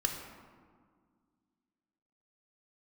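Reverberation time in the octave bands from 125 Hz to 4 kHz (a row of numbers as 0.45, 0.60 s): 2.3, 2.7, 1.9, 1.8, 1.3, 0.85 s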